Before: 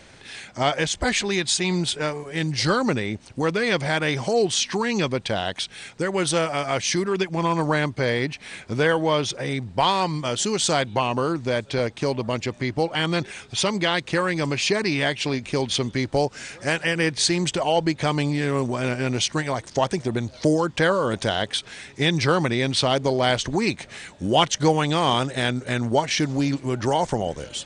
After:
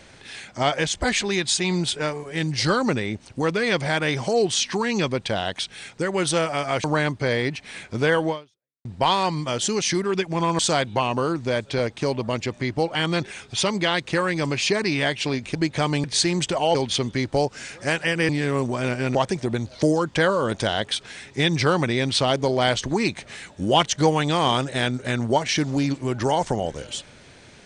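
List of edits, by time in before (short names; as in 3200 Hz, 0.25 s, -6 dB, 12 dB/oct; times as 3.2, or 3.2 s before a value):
6.84–7.61 move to 10.59
9.06–9.62 fade out exponential
15.55–17.09 swap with 17.8–18.29
19.15–19.77 cut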